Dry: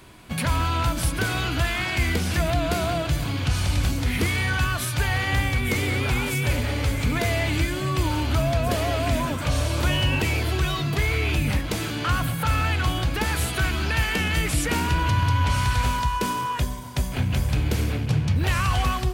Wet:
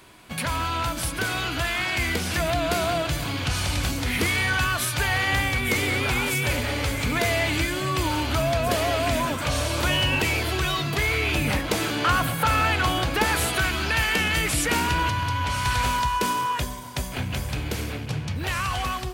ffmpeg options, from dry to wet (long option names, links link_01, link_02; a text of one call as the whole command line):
ffmpeg -i in.wav -filter_complex "[0:a]asettb=1/sr,asplit=3[link_01][link_02][link_03];[link_01]atrim=end=11.354[link_04];[link_02]atrim=start=11.35:end=13.58,asetpts=PTS-STARTPTS,afade=type=in:duration=0.004:curve=qsin,afade=type=out:start_time=2.226:duration=0.004:curve=qsin,equalizer=frequency=550:width_type=o:width=2.7:gain=4[link_05];[link_03]atrim=start=13.576[link_06];[link_04][link_05]acrossfade=duration=0.004:curve1=hsin:curve2=qsin[link_07];[link_07][link_06]acrossfade=duration=0.004:curve1=qsin:curve2=hsin,asplit=3[link_08][link_09][link_10];[link_08]atrim=end=15.092[link_11];[link_09]atrim=start=15.088:end=15.652,asetpts=PTS-STARTPTS,volume=-3dB[link_12];[link_10]atrim=start=15.648[link_13];[link_11][link_12]acrossfade=duration=0.004:curve1=hsin:curve2=hsin[link_14];[link_14][link_13]acrossfade=duration=0.004:curve1=hsin:curve2=hsin,lowshelf=frequency=250:gain=-8.5,dynaudnorm=framelen=140:gausssize=31:maxgain=3dB" out.wav